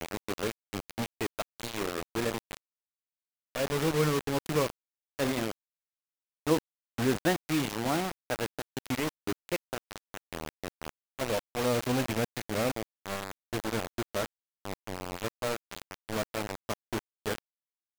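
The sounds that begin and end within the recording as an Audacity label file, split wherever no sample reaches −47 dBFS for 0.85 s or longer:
3.550000	5.510000	sound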